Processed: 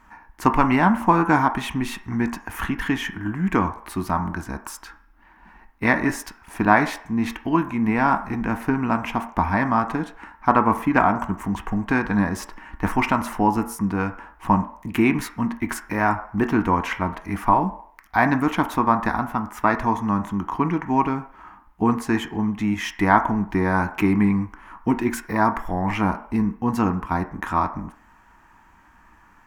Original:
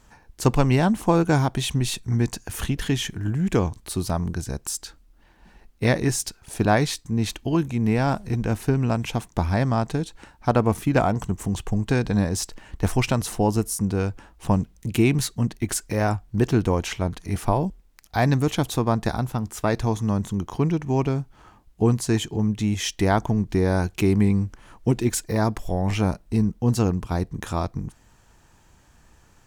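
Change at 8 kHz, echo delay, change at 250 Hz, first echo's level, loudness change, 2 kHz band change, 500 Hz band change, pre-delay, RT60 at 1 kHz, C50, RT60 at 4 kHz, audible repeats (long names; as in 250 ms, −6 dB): −9.0 dB, no echo audible, +2.0 dB, no echo audible, +1.5 dB, +7.0 dB, −2.0 dB, 3 ms, 0.60 s, 13.0 dB, 0.60 s, no echo audible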